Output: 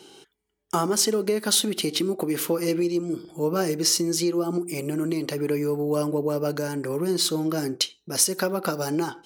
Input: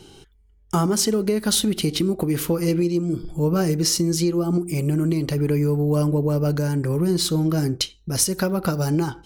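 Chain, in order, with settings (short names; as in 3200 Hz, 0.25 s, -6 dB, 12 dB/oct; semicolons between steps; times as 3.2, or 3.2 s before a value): HPF 300 Hz 12 dB/oct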